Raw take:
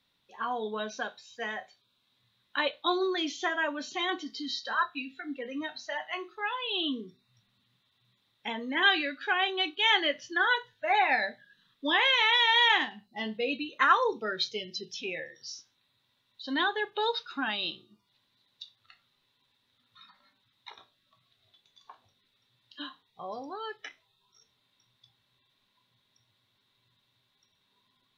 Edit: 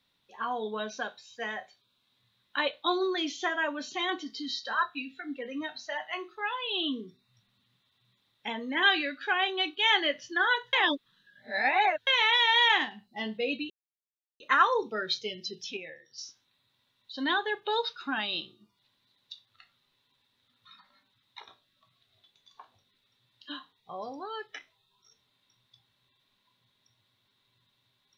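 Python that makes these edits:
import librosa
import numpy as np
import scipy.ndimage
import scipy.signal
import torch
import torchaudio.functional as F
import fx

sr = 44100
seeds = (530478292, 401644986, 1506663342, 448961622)

y = fx.edit(x, sr, fx.reverse_span(start_s=10.73, length_s=1.34),
    fx.insert_silence(at_s=13.7, length_s=0.7),
    fx.clip_gain(start_s=15.07, length_s=0.41, db=-7.0), tone=tone)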